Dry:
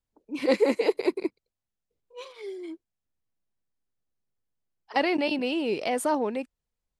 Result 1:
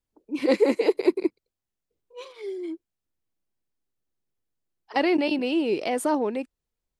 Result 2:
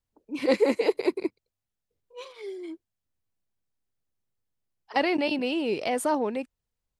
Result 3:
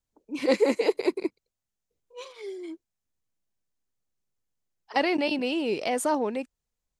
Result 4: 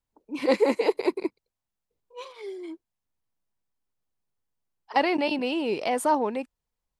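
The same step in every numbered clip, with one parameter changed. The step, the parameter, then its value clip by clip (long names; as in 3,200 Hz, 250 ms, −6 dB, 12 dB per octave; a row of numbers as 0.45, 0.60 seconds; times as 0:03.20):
parametric band, centre frequency: 340, 98, 6,700, 940 Hertz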